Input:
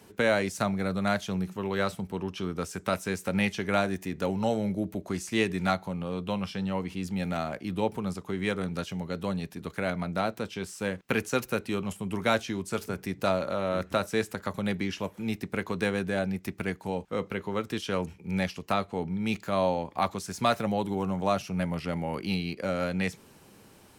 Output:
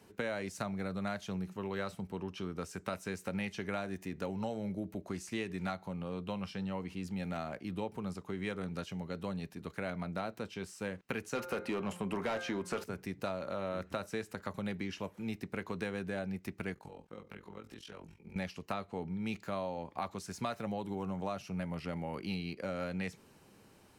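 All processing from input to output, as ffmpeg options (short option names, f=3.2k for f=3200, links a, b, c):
-filter_complex "[0:a]asettb=1/sr,asplit=3[a][b][c];[a]atrim=end=11.354[d];[b]atrim=start=11.35:end=12.84,asetpts=PTS-STARTPTS,afade=t=in:d=0.004:c=qsin,afade=t=out:st=1.486:d=0.004:c=qsin,equalizer=f=3.2k:w=0.31:g=-5,bandreject=f=176.5:t=h:w=4,bandreject=f=353:t=h:w=4,bandreject=f=529.5:t=h:w=4,bandreject=f=706:t=h:w=4,bandreject=f=882.5:t=h:w=4,bandreject=f=1.059k:t=h:w=4,bandreject=f=1.2355k:t=h:w=4,bandreject=f=1.412k:t=h:w=4,bandreject=f=1.5885k:t=h:w=4,bandreject=f=1.765k:t=h:w=4,bandreject=f=1.9415k:t=h:w=4,bandreject=f=2.118k:t=h:w=4,asplit=2[e][f];[f]highpass=f=720:p=1,volume=24dB,asoftclip=type=tanh:threshold=-14dB[g];[e][g]amix=inputs=2:normalize=0,lowpass=f=2.4k:p=1,volume=-6dB[h];[c]atrim=start=12.836[i];[d][h]acrossfade=d=0.004:c1=hsin:c2=qsin[j];[j][i]acrossfade=d=0.004:c1=qsin:c2=hsin,asettb=1/sr,asplit=3[k][l][m];[k]atrim=end=16.744[n];[l]atrim=start=16.74:end=18.36,asetpts=PTS-STARTPTS,afade=t=in:d=0.004:c=qsin,afade=t=out:st=1.616:d=0.004:c=qsin,acompressor=threshold=-37dB:ratio=6:attack=3.2:release=140:knee=1:detection=peak,tremolo=f=43:d=0.857,asplit=2[o][p];[p]adelay=19,volume=-3dB[q];[o][q]amix=inputs=2:normalize=0,atrim=end_sample=71442[r];[m]atrim=start=18.356[s];[n][r]acrossfade=d=0.004:c1=hsin:c2=qsin[t];[t][s]acrossfade=d=0.004:c1=qsin:c2=hsin,highshelf=f=7.7k:g=-5,bandreject=f=3.4k:w=21,acompressor=threshold=-27dB:ratio=6,volume=-6dB"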